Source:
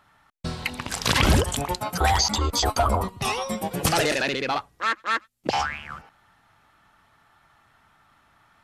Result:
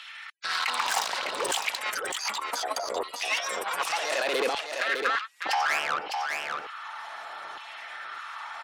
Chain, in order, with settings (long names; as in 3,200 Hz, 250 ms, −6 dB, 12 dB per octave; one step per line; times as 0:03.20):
gate on every frequency bin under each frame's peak −30 dB strong
low-pass filter 8,700 Hz 12 dB per octave
high-shelf EQ 4,700 Hz +4 dB
compressor whose output falls as the input rises −32 dBFS, ratio −1
0:01.39–0:03.66: rotating-speaker cabinet horn 5.5 Hz
tube saturation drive 29 dB, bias 0.6
auto-filter high-pass saw down 0.66 Hz 410–2,900 Hz
single-tap delay 605 ms −6.5 dB
multiband upward and downward compressor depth 40%
level +7 dB